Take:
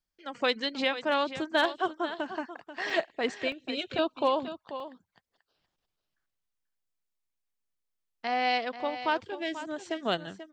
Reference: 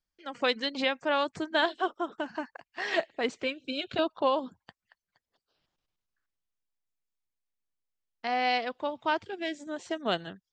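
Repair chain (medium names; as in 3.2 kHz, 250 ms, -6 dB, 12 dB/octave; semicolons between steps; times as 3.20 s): clip repair -15.5 dBFS; interpolate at 2.90/3.52/4.80 s, 1.6 ms; inverse comb 487 ms -12 dB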